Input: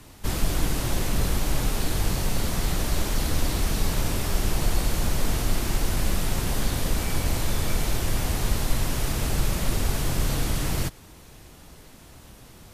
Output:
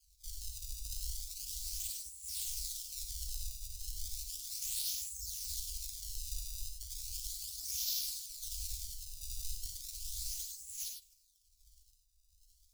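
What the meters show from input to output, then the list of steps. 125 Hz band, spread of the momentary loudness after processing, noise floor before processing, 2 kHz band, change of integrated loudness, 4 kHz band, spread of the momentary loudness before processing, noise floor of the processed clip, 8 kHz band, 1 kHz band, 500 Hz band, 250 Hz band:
−26.5 dB, 9 LU, −48 dBFS, −30.0 dB, −12.5 dB, −10.0 dB, 1 LU, −70 dBFS, −7.0 dB, below −40 dB, below −40 dB, below −40 dB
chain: auto-filter low-pass sine 1.3 Hz 830–4,000 Hz
gate on every frequency bin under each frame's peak −20 dB weak
sample-and-hold swept by an LFO 23×, swing 160% 0.35 Hz
inverse Chebyshev band-stop filter 210–1,300 Hz, stop band 70 dB
reverb whose tail is shaped and stops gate 120 ms rising, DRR 4.5 dB
level +2 dB

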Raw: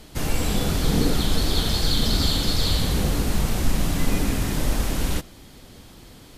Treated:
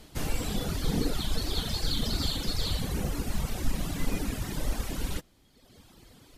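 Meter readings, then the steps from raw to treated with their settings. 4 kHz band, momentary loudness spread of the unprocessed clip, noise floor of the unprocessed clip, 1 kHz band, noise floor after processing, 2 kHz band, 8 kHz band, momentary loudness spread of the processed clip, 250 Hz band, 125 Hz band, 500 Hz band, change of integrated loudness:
−8.0 dB, 4 LU, −47 dBFS, −8.5 dB, −61 dBFS, −8.5 dB, −8.5 dB, 4 LU, −8.5 dB, −8.5 dB, −8.5 dB, −8.5 dB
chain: reverb reduction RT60 1.3 s
level −5.5 dB

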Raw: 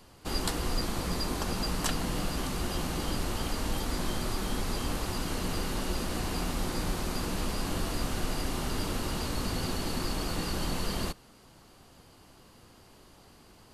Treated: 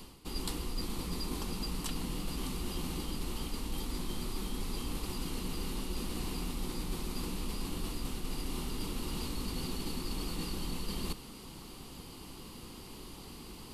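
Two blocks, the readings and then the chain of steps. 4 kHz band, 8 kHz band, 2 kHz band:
−5.0 dB, −5.5 dB, −9.5 dB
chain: graphic EQ with 15 bands 100 Hz −8 dB, 630 Hz −12 dB, 1,600 Hz −11 dB, 6,300 Hz −5 dB
reversed playback
downward compressor 4 to 1, threshold −47 dBFS, peak gain reduction 18 dB
reversed playback
level +11 dB

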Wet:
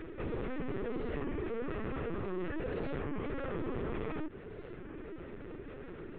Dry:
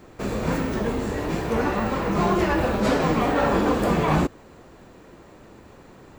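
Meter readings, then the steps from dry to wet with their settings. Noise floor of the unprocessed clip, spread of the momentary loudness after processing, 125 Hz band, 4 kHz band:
−49 dBFS, 9 LU, −15.0 dB, −20.5 dB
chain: high-pass filter 170 Hz 6 dB per octave
downward compressor 3 to 1, threshold −26 dBFS, peak gain reduction 7 dB
brickwall limiter −24.5 dBFS, peak gain reduction 8.5 dB
upward compression, threshold −43 dBFS
phaser with its sweep stopped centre 330 Hz, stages 4
soft clipping −39.5 dBFS, distortion −9 dB
high-frequency loss of the air 480 metres
linear-prediction vocoder at 8 kHz pitch kept
wow of a warped record 33 1/3 rpm, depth 160 cents
level +7 dB

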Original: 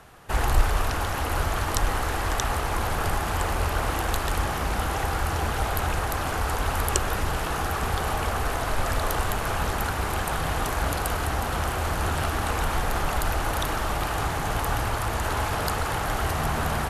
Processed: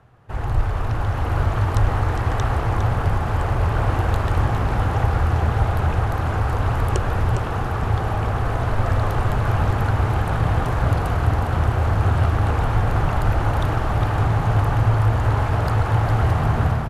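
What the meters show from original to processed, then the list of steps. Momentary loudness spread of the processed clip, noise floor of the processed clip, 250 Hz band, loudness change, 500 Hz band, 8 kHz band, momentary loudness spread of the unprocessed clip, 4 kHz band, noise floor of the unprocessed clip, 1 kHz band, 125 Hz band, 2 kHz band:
4 LU, −24 dBFS, +5.5 dB, +5.5 dB, +3.5 dB, below −10 dB, 2 LU, −5.0 dB, −29 dBFS, +2.0 dB, +11.5 dB, −0.5 dB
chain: low-pass filter 1,300 Hz 6 dB per octave
parametric band 110 Hz +13.5 dB 0.65 octaves
automatic gain control gain up to 10 dB
on a send: single-tap delay 407 ms −8 dB
on the sum: level −5 dB

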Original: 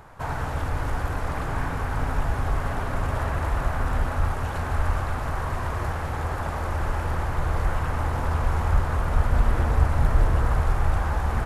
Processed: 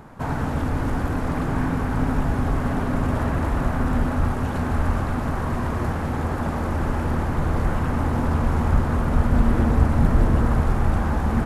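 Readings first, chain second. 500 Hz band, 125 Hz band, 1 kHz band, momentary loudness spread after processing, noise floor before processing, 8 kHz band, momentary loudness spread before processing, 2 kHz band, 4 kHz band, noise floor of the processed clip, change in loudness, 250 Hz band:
+4.0 dB, +3.0 dB, +1.0 dB, 6 LU, −30 dBFS, 0.0 dB, 6 LU, +0.5 dB, 0.0 dB, −26 dBFS, +3.5 dB, +12.0 dB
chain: parametric band 230 Hz +14.5 dB 1.3 octaves

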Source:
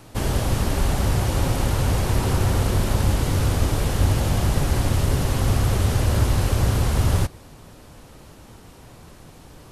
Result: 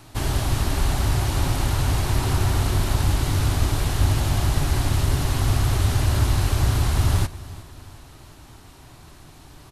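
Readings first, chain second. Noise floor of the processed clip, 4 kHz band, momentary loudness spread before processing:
−47 dBFS, +1.5 dB, 2 LU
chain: thirty-one-band graphic EQ 200 Hz −10 dB, 500 Hz −12 dB, 4,000 Hz +3 dB
on a send: repeating echo 361 ms, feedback 46%, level −19 dB

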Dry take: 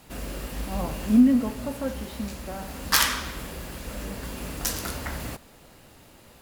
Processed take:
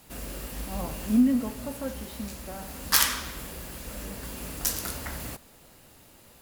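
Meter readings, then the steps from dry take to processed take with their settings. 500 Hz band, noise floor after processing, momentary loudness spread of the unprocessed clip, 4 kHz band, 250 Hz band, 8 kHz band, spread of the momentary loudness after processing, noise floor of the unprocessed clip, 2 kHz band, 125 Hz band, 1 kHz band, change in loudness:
−4.0 dB, −55 dBFS, 17 LU, −2.0 dB, −4.0 dB, +0.5 dB, 16 LU, −52 dBFS, −3.5 dB, −4.0 dB, −4.0 dB, −2.5 dB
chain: high-shelf EQ 6,700 Hz +8 dB
level −4 dB

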